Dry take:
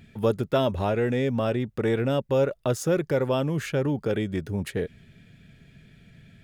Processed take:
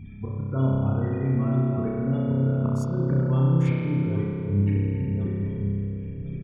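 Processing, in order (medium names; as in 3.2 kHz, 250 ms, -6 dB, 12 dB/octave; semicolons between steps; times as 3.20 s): backward echo that repeats 536 ms, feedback 44%, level -8.5 dB; spectral gate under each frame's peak -20 dB strong; tone controls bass +9 dB, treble -6 dB; comb 0.9 ms, depth 54%; slow attack 333 ms; compression, threshold -27 dBFS, peak gain reduction 13 dB; spring tank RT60 2.6 s, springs 30 ms, chirp 25 ms, DRR -5 dB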